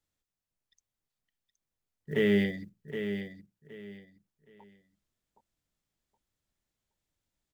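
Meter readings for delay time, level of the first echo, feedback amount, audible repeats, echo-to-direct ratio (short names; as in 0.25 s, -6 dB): 0.769 s, -9.0 dB, 25%, 3, -8.5 dB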